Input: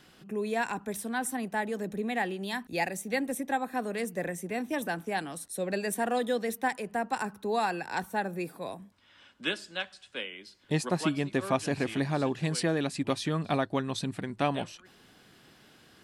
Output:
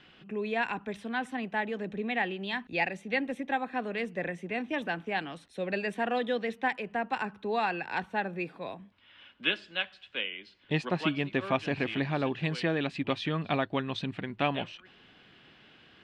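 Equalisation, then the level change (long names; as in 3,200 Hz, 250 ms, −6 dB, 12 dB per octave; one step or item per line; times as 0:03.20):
low-pass with resonance 2,900 Hz, resonance Q 2.2
−1.5 dB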